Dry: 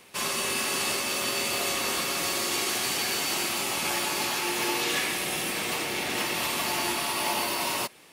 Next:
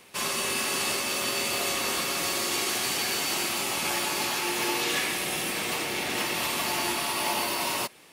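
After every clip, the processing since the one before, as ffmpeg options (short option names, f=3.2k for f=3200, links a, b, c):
-af anull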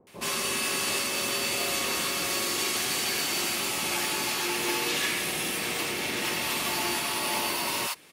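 -filter_complex "[0:a]acrossover=split=790[a][b];[b]adelay=70[c];[a][c]amix=inputs=2:normalize=0"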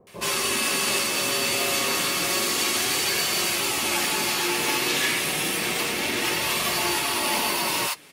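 -af "flanger=delay=1.7:depth=5.9:regen=-52:speed=0.3:shape=sinusoidal,volume=8.5dB"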